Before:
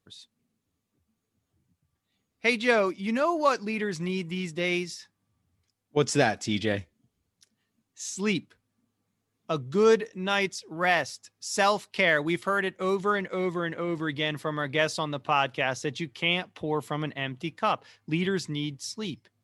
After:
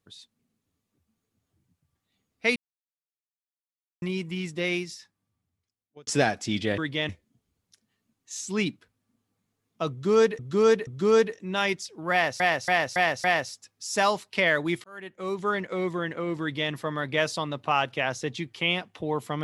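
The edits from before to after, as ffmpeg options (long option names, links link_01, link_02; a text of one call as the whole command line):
ffmpeg -i in.wav -filter_complex "[0:a]asplit=13[link_01][link_02][link_03][link_04][link_05][link_06][link_07][link_08][link_09][link_10][link_11][link_12][link_13];[link_01]atrim=end=2.56,asetpts=PTS-STARTPTS,afade=type=out:start_time=2.556:duration=0.004:curve=hsin[link_14];[link_02]atrim=start=2.56:end=4.02,asetpts=PTS-STARTPTS,volume=0[link_15];[link_03]atrim=start=4.02:end=6.07,asetpts=PTS-STARTPTS,afade=type=in:duration=0.004:curve=hsin,afade=type=out:start_time=0.63:duration=1.42[link_16];[link_04]atrim=start=6.07:end=6.782,asetpts=PTS-STARTPTS,afade=type=in:duration=0.004:curve=hsin[link_17];[link_05]atrim=start=14.018:end=14.332[link_18];[link_06]atrim=start=6.778:end=10.082[link_19];[link_07]atrim=start=9.598:end=10.082[link_20];[link_08]atrim=start=9.598:end=11.132[link_21];[link_09]atrim=start=10.848:end=11.132[link_22];[link_10]atrim=start=10.848:end=11.132[link_23];[link_11]atrim=start=10.848:end=11.132[link_24];[link_12]atrim=start=10.848:end=12.45,asetpts=PTS-STARTPTS,afade=type=out:start_time=1.598:duration=0.004:curve=hsin[link_25];[link_13]atrim=start=12.45,asetpts=PTS-STARTPTS,afade=type=in:duration=0.75[link_26];[link_14][link_15][link_16][link_17]concat=n=4:v=0:a=1[link_27];[link_27][link_18]acrossfade=duration=0.004:curve1=hsin:curve2=hsin[link_28];[link_28][link_19]acrossfade=duration=0.004:curve1=hsin:curve2=hsin[link_29];[link_29][link_20]acrossfade=duration=0.004:curve1=hsin:curve2=hsin[link_30];[link_30][link_21]acrossfade=duration=0.004:curve1=hsin:curve2=hsin[link_31];[link_31][link_22]acrossfade=duration=0.004:curve1=hsin:curve2=hsin[link_32];[link_32][link_23]acrossfade=duration=0.004:curve1=hsin:curve2=hsin[link_33];[link_33][link_24]acrossfade=duration=0.004:curve1=hsin:curve2=hsin[link_34];[link_25][link_26]concat=n=2:v=0:a=1[link_35];[link_34][link_35]acrossfade=duration=0.004:curve1=hsin:curve2=hsin" out.wav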